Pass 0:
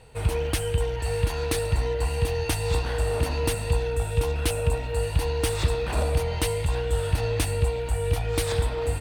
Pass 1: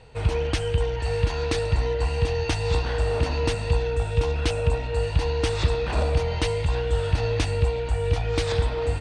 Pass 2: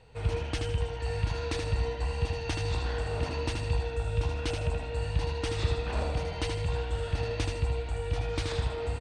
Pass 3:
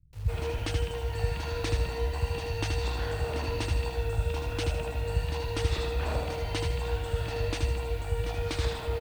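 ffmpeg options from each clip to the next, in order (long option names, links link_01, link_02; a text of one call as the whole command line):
ffmpeg -i in.wav -af "lowpass=frequency=6700:width=0.5412,lowpass=frequency=6700:width=1.3066,volume=1.5dB" out.wav
ffmpeg -i in.wav -af "aecho=1:1:78|156|234|312:0.562|0.202|0.0729|0.0262,volume=-7.5dB" out.wav
ffmpeg -i in.wav -filter_complex "[0:a]acrusher=bits=8:mix=0:aa=0.000001,acrossover=split=160[link_01][link_02];[link_02]adelay=130[link_03];[link_01][link_03]amix=inputs=2:normalize=0,volume=1dB" out.wav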